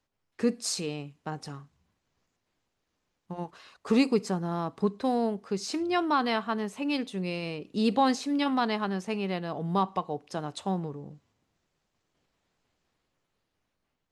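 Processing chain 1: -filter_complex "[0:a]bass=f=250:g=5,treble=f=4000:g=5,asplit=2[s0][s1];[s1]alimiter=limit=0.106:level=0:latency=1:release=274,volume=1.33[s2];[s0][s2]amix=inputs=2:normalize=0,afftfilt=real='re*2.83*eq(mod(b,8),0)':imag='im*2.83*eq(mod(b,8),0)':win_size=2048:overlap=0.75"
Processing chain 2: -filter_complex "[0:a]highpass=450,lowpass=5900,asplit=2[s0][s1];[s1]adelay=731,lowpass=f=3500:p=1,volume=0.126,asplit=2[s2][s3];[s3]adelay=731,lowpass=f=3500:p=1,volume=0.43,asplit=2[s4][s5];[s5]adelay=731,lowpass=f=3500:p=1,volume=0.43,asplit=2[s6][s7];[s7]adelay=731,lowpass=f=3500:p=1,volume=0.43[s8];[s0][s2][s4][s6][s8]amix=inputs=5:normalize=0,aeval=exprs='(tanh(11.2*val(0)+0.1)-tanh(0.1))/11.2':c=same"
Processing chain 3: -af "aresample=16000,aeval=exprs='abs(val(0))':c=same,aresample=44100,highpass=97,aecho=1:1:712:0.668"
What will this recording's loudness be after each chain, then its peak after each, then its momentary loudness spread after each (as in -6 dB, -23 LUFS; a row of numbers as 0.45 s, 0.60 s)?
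-23.5 LUFS, -35.0 LUFS, -33.0 LUFS; -6.0 dBFS, -20.5 dBFS, -14.0 dBFS; 14 LU, 16 LU, 15 LU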